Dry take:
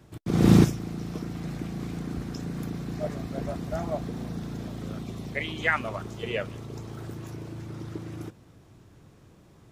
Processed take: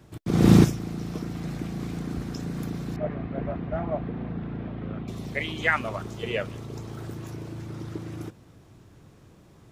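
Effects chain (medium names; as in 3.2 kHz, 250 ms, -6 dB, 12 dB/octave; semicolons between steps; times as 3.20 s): 2.96–5.08 s: low-pass 2.7 kHz 24 dB/octave; trim +1.5 dB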